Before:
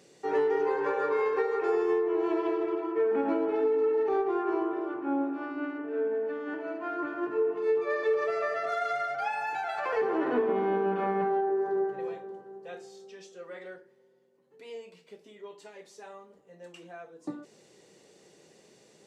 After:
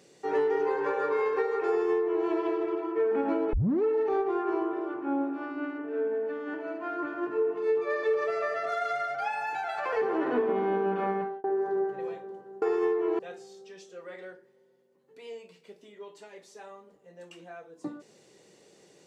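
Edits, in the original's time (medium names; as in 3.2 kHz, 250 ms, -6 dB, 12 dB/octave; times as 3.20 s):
1.69–2.26 s: copy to 12.62 s
3.53 s: tape start 0.30 s
11.11–11.44 s: fade out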